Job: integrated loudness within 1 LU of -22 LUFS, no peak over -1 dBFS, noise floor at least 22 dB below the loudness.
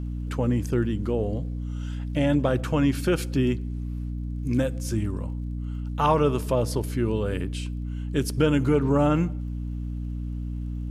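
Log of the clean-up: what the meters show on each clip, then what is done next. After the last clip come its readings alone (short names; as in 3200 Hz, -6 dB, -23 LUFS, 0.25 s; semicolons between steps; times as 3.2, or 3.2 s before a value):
ticks 31/s; hum 60 Hz; harmonics up to 300 Hz; hum level -28 dBFS; loudness -26.5 LUFS; peak -7.5 dBFS; loudness target -22.0 LUFS
-> de-click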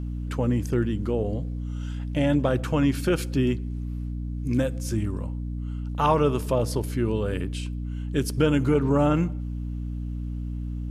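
ticks 0.092/s; hum 60 Hz; harmonics up to 300 Hz; hum level -28 dBFS
-> de-hum 60 Hz, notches 5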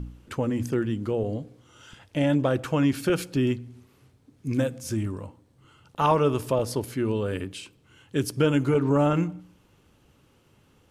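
hum none; loudness -26.0 LUFS; peak -8.0 dBFS; loudness target -22.0 LUFS
-> gain +4 dB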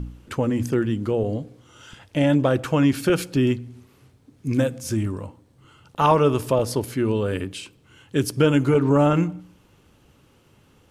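loudness -22.0 LUFS; peak -4.0 dBFS; noise floor -58 dBFS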